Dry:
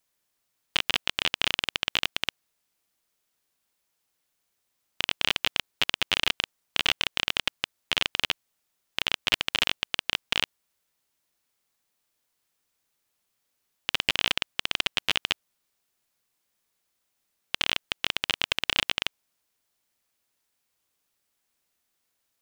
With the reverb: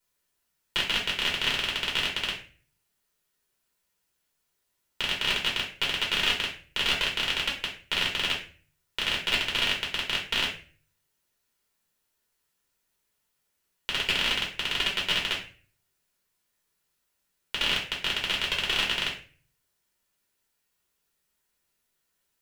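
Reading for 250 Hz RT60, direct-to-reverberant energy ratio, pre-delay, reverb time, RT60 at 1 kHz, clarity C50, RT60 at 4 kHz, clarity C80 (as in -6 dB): 0.50 s, -3.0 dB, 3 ms, 0.40 s, 0.35 s, 7.0 dB, 0.35 s, 12.0 dB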